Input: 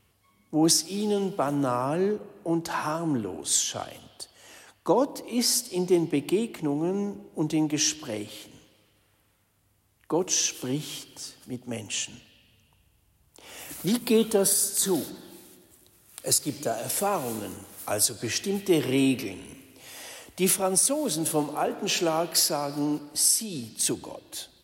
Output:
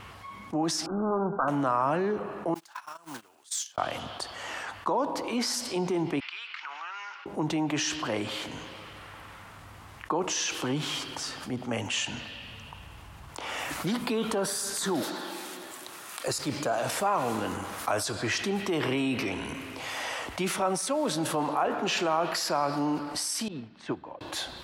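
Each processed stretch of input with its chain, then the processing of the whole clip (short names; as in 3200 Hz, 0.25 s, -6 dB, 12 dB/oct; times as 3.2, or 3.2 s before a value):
0.86–1.48 self-modulated delay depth 0.48 ms + brick-wall FIR low-pass 1600 Hz
2.54–3.78 block floating point 5-bit + gate -26 dBFS, range -38 dB + pre-emphasis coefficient 0.97
6.2–7.26 Chebyshev band-pass 1300–5200 Hz, order 3 + compressor 3:1, threshold -53 dBFS
15.02–16.28 HPF 280 Hz + high shelf 4500 Hz +6 dB
23.48–24.21 LPF 2300 Hz + upward expander 2.5:1, over -46 dBFS
whole clip: limiter -19.5 dBFS; EQ curve 440 Hz 0 dB, 1100 Hz +11 dB, 7300 Hz -5 dB, 13000 Hz -13 dB; fast leveller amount 50%; gain -4.5 dB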